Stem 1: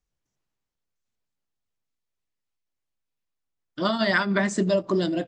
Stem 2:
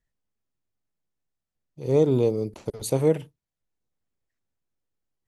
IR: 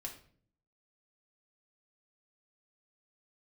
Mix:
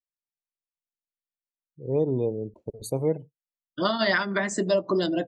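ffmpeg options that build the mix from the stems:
-filter_complex "[0:a]highshelf=f=8100:g=3.5,acrossover=split=300[s0][s1];[s0]acompressor=threshold=0.02:ratio=4[s2];[s2][s1]amix=inputs=2:normalize=0,volume=1.19,asplit=2[s3][s4];[1:a]dynaudnorm=f=180:g=5:m=2.66,volume=0.631[s5];[s4]apad=whole_len=232461[s6];[s5][s6]sidechaingate=range=0.447:threshold=0.0251:ratio=16:detection=peak[s7];[s3][s7]amix=inputs=2:normalize=0,afftdn=nr=32:nf=-41,alimiter=limit=0.237:level=0:latency=1:release=287"

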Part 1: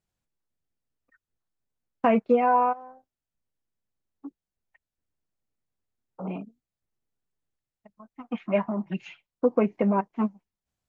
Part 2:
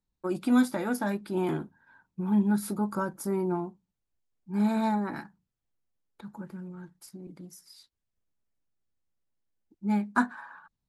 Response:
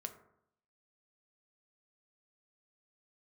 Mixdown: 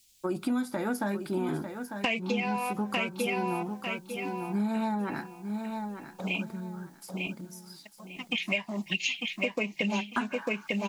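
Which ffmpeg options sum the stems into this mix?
-filter_complex "[0:a]aexciter=amount=12.7:drive=8.9:freq=2200,volume=0.794,asplit=2[s0][s1];[s1]volume=0.562[s2];[1:a]volume=1.19,asplit=3[s3][s4][s5];[s4]volume=0.178[s6];[s5]volume=0.316[s7];[2:a]atrim=start_sample=2205[s8];[s6][s8]afir=irnorm=-1:irlink=0[s9];[s2][s7]amix=inputs=2:normalize=0,aecho=0:1:898|1796|2694|3592:1|0.25|0.0625|0.0156[s10];[s0][s3][s9][s10]amix=inputs=4:normalize=0,acompressor=threshold=0.0501:ratio=10"

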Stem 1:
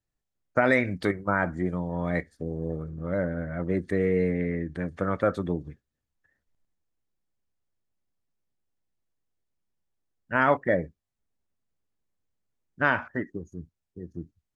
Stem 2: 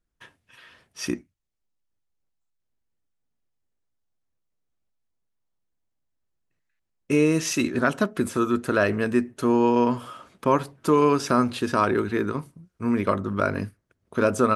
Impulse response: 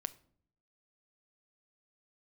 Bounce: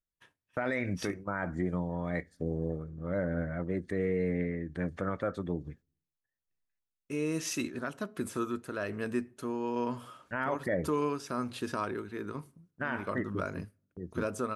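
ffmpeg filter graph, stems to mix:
-filter_complex "[0:a]agate=range=0.158:threshold=0.00282:ratio=16:detection=peak,volume=0.891,asplit=2[s0][s1];[s1]volume=0.0668[s2];[1:a]agate=range=0.501:threshold=0.00224:ratio=16:detection=peak,highshelf=f=7600:g=4.5,volume=0.251,asplit=2[s3][s4];[s4]volume=0.398[s5];[2:a]atrim=start_sample=2205[s6];[s2][s5]amix=inputs=2:normalize=0[s7];[s7][s6]afir=irnorm=-1:irlink=0[s8];[s0][s3][s8]amix=inputs=3:normalize=0,tremolo=f=1.2:d=0.48,alimiter=limit=0.0891:level=0:latency=1:release=112"

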